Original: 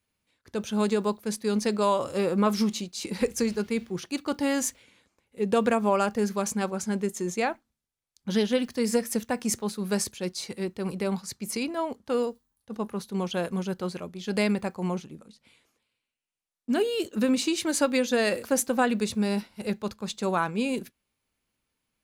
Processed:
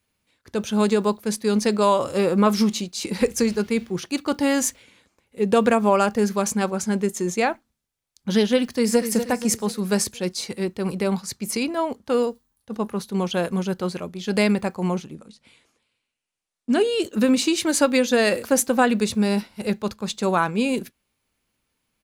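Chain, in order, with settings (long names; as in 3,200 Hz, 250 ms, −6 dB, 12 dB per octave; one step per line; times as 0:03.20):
0:08.64–0:09.08: delay throw 240 ms, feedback 50%, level −9 dB
0:15.14–0:17.04: Butterworth low-pass 11,000 Hz 36 dB per octave
level +5.5 dB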